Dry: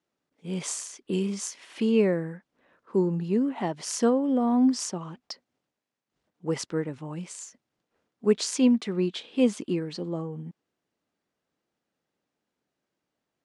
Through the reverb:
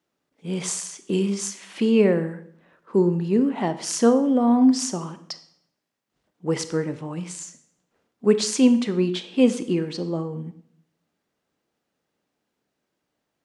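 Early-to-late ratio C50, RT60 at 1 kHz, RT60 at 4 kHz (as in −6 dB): 13.5 dB, 0.60 s, 0.60 s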